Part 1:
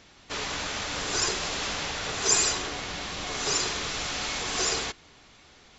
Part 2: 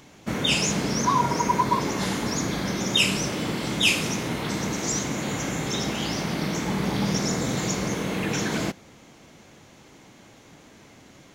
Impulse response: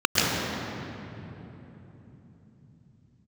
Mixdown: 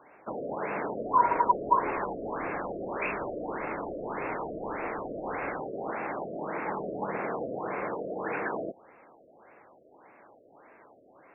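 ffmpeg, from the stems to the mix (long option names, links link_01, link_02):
-filter_complex "[0:a]adelay=700,volume=-11dB[link_01];[1:a]acrossover=split=400 2300:gain=0.0708 1 0.0891[link_02][link_03][link_04];[link_02][link_03][link_04]amix=inputs=3:normalize=0,volume=1.5dB[link_05];[link_01][link_05]amix=inputs=2:normalize=0,afftfilt=real='re*lt(b*sr/1024,680*pow(2800/680,0.5+0.5*sin(2*PI*1.7*pts/sr)))':imag='im*lt(b*sr/1024,680*pow(2800/680,0.5+0.5*sin(2*PI*1.7*pts/sr)))':win_size=1024:overlap=0.75"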